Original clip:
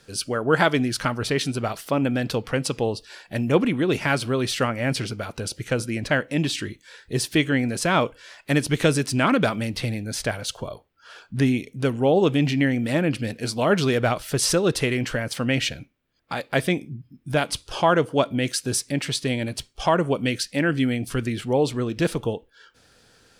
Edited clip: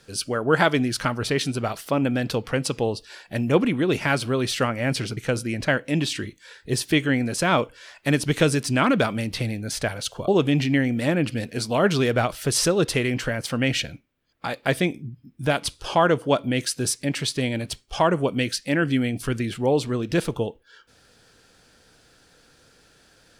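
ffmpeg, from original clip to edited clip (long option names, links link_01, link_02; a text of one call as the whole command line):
ffmpeg -i in.wav -filter_complex "[0:a]asplit=3[link_01][link_02][link_03];[link_01]atrim=end=5.172[link_04];[link_02]atrim=start=5.598:end=10.712[link_05];[link_03]atrim=start=12.148[link_06];[link_04][link_05]acrossfade=duration=0.004:curve1=hsin:curve2=hsin[link_07];[link_07][link_06]acrossfade=duration=0.004:curve1=hsin:curve2=hsin" out.wav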